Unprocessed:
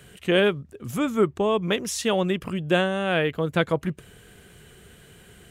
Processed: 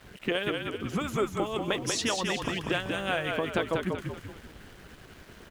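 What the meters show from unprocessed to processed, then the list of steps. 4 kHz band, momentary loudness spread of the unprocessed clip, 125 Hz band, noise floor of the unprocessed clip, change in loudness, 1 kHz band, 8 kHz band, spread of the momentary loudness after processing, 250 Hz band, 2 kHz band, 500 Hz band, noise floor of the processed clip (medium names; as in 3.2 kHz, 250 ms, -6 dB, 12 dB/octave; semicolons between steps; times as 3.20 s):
-2.5 dB, 8 LU, -6.5 dB, -52 dBFS, -6.0 dB, -4.0 dB, -1.0 dB, 22 LU, -7.0 dB, -4.0 dB, -7.5 dB, -52 dBFS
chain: level-controlled noise filter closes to 2.2 kHz, open at -20 dBFS; harmonic-percussive split harmonic -15 dB; compression, threshold -33 dBFS, peak gain reduction 15 dB; small samples zeroed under -56.5 dBFS; frequency-shifting echo 190 ms, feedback 43%, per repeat -43 Hz, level -4 dB; trim +6.5 dB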